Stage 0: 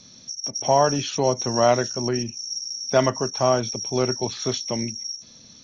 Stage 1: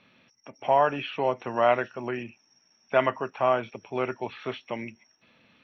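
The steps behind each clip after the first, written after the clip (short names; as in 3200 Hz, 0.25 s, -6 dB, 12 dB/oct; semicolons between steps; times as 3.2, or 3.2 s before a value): elliptic low-pass 2700 Hz, stop band 70 dB; tilt +3.5 dB/oct; gain -1 dB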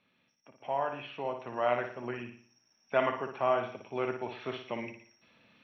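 vocal rider within 5 dB 2 s; on a send: flutter echo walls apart 9.9 m, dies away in 0.49 s; on the sum: gain -8.5 dB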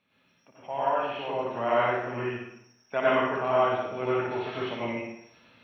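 plate-style reverb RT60 0.75 s, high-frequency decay 0.75×, pre-delay 80 ms, DRR -8 dB; gain -2 dB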